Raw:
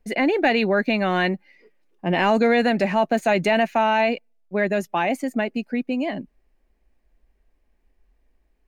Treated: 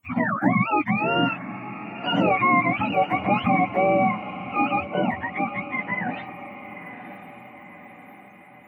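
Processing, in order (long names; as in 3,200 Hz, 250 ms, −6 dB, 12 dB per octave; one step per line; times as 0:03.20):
frequency axis turned over on the octave scale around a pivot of 710 Hz
feedback delay with all-pass diffusion 984 ms, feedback 53%, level −13 dB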